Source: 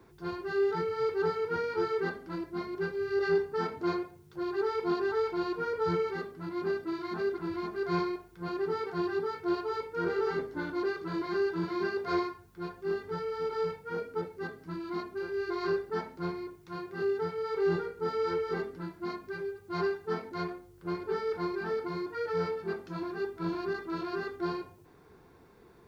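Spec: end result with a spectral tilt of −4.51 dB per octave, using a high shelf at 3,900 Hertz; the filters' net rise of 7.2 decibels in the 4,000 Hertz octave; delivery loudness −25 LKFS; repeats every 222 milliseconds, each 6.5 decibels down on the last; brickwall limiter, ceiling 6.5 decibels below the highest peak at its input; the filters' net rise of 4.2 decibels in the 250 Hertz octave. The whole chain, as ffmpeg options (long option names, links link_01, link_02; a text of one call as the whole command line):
ffmpeg -i in.wav -af "equalizer=frequency=250:width_type=o:gain=8,highshelf=frequency=3900:gain=7,equalizer=frequency=4000:width_type=o:gain=4,alimiter=limit=-22dB:level=0:latency=1,aecho=1:1:222|444|666|888|1110|1332:0.473|0.222|0.105|0.0491|0.0231|0.0109,volume=5.5dB" out.wav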